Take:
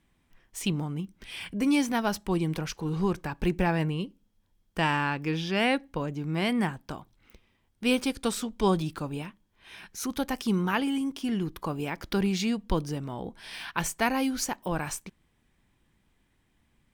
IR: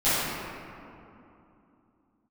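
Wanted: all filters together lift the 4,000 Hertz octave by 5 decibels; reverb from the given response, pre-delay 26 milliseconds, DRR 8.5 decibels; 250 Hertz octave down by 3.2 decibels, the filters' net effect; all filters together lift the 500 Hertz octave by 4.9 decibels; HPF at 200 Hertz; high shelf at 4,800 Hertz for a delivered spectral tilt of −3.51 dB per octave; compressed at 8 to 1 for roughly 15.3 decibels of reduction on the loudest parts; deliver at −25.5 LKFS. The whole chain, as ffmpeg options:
-filter_complex "[0:a]highpass=200,equalizer=frequency=250:width_type=o:gain=-4,equalizer=frequency=500:width_type=o:gain=7.5,equalizer=frequency=4000:width_type=o:gain=4.5,highshelf=frequency=4800:gain=5,acompressor=threshold=-33dB:ratio=8,asplit=2[link_01][link_02];[1:a]atrim=start_sample=2205,adelay=26[link_03];[link_02][link_03]afir=irnorm=-1:irlink=0,volume=-25.5dB[link_04];[link_01][link_04]amix=inputs=2:normalize=0,volume=11.5dB"

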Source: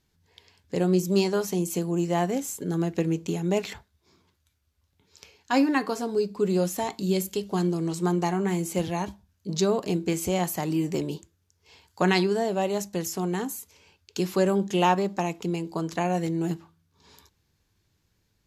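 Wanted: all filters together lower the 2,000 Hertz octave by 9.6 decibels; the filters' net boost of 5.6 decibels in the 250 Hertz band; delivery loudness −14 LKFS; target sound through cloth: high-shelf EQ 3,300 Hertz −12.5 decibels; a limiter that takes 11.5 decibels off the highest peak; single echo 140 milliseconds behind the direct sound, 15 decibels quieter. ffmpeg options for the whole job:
ffmpeg -i in.wav -af "equalizer=frequency=250:width_type=o:gain=9,equalizer=frequency=2000:width_type=o:gain=-8.5,alimiter=limit=-17dB:level=0:latency=1,highshelf=frequency=3300:gain=-12.5,aecho=1:1:140:0.178,volume=12.5dB" out.wav

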